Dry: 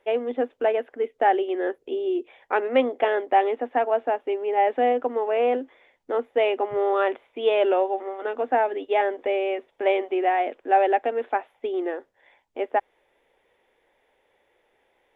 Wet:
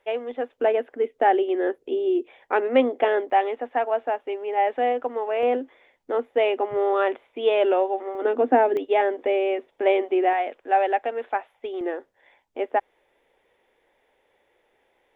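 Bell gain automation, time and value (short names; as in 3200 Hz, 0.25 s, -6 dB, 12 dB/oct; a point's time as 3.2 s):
bell 290 Hz 1.4 oct
-7.5 dB
from 0.58 s +3.5 dB
from 3.3 s -5 dB
from 5.43 s +1 dB
from 8.15 s +12 dB
from 8.77 s +4 dB
from 10.33 s -6 dB
from 11.81 s +1 dB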